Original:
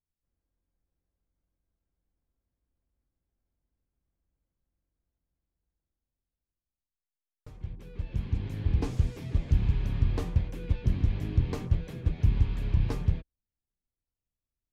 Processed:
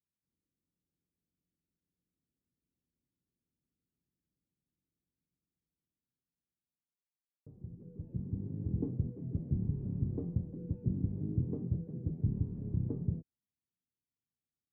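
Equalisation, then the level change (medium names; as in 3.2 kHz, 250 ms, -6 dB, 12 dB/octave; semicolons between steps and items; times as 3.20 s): Butterworth band-pass 260 Hz, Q 0.84; distance through air 190 m; bass shelf 190 Hz +11 dB; -4.5 dB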